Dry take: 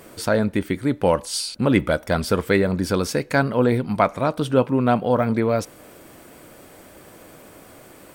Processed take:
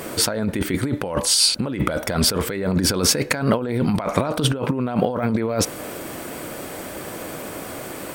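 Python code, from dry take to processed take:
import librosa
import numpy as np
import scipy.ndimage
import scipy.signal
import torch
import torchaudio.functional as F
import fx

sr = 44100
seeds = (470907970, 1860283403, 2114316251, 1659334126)

y = fx.low_shelf(x, sr, hz=63.0, db=-8.0)
y = fx.over_compress(y, sr, threshold_db=-28.0, ratio=-1.0)
y = F.gain(torch.from_numpy(y), 6.5).numpy()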